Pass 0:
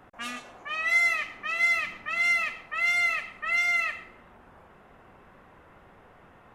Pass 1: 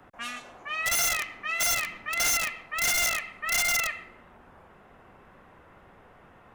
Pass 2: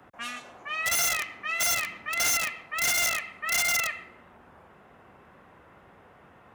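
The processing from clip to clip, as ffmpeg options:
-filter_complex "[0:a]acrossover=split=130|650|3200[a][b][c][d];[b]alimiter=level_in=22dB:limit=-24dB:level=0:latency=1,volume=-22dB[e];[a][e][c][d]amix=inputs=4:normalize=0,aeval=exprs='(mod(11.2*val(0)+1,2)-1)/11.2':c=same"
-af "highpass=64"

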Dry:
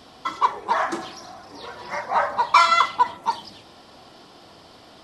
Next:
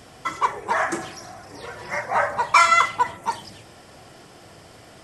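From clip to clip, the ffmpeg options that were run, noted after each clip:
-af "equalizer=f=125:t=o:w=1:g=5,equalizer=f=250:t=o:w=1:g=-6,equalizer=f=1k:t=o:w=1:g=-7,equalizer=f=2k:t=o:w=1:g=4,equalizer=f=4k:t=o:w=1:g=-12,equalizer=f=8k:t=o:w=1:g=7,volume=4.5dB"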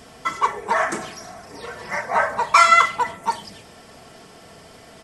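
-af "aecho=1:1:4.5:0.41,volume=1dB"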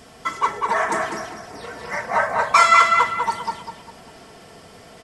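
-filter_complex "[0:a]asplit=2[a][b];[b]adelay=199,lowpass=f=3.9k:p=1,volume=-3dB,asplit=2[c][d];[d]adelay=199,lowpass=f=3.9k:p=1,volume=0.36,asplit=2[e][f];[f]adelay=199,lowpass=f=3.9k:p=1,volume=0.36,asplit=2[g][h];[h]adelay=199,lowpass=f=3.9k:p=1,volume=0.36,asplit=2[i][j];[j]adelay=199,lowpass=f=3.9k:p=1,volume=0.36[k];[a][c][e][g][i][k]amix=inputs=6:normalize=0,volume=-1dB"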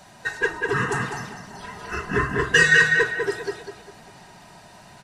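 -af "afftfilt=real='real(if(lt(b,1008),b+24*(1-2*mod(floor(b/24),2)),b),0)':imag='imag(if(lt(b,1008),b+24*(1-2*mod(floor(b/24),2)),b),0)':win_size=2048:overlap=0.75,volume=-2.5dB"

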